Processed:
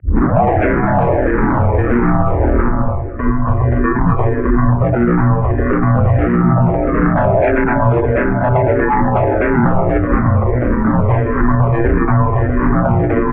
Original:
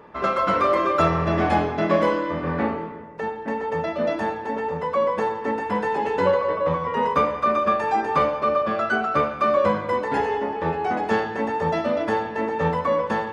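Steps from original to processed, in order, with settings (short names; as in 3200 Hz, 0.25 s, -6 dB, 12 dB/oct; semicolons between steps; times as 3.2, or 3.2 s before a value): tape start at the beginning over 0.41 s; notches 60/120/180 Hz; comb 4.1 ms, depth 52%; ring modulator 61 Hz; overloaded stage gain 21 dB; formant shift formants -5 st; on a send: feedback echo 0.242 s, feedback 46%, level -19 dB; on the sum: mistuned SSB -260 Hz 170–2300 Hz; maximiser +26 dB; endless phaser -1.6 Hz; gain -1.5 dB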